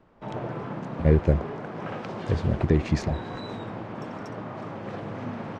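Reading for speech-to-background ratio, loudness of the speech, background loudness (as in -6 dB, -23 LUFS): 10.0 dB, -25.5 LUFS, -35.5 LUFS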